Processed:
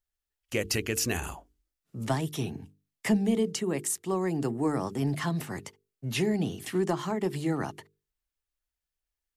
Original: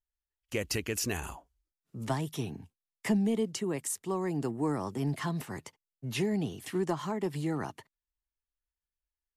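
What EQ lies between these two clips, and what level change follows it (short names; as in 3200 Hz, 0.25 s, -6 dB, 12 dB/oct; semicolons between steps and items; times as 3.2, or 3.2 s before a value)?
bell 980 Hz -3.5 dB 0.31 oct; notches 50/100/150/200/250/300/350/400/450 Hz; +4.0 dB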